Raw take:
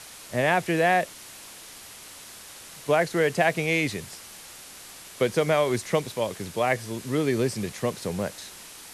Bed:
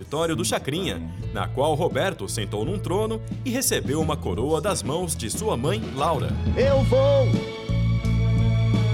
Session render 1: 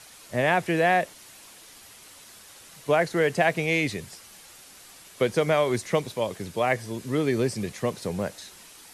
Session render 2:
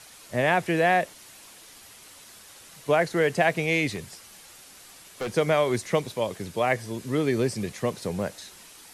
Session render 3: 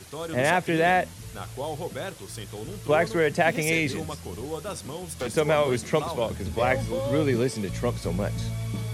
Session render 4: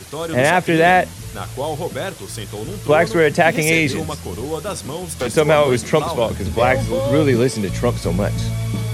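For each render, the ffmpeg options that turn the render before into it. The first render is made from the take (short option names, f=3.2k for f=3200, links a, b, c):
-af "afftdn=nr=6:nf=-45"
-filter_complex "[0:a]asettb=1/sr,asplit=3[a][b][c];[a]atrim=end=3.954[d];[b]atrim=start=3.95:end=5.35,asetpts=PTS-STARTPTS,afade=t=in:d=0.004:c=qsin,afade=t=out:st=1.396:d=0.004:c=qsin,asoftclip=type=hard:threshold=-27.5dB[e];[c]atrim=start=5.346[f];[d][e]acrossfade=d=0.004:c1=hsin:c2=qsin[g];[g][f]acrossfade=d=0.004:c1=qsin:c2=hsin"
-filter_complex "[1:a]volume=-10.5dB[a];[0:a][a]amix=inputs=2:normalize=0"
-af "volume=8.5dB,alimiter=limit=-3dB:level=0:latency=1"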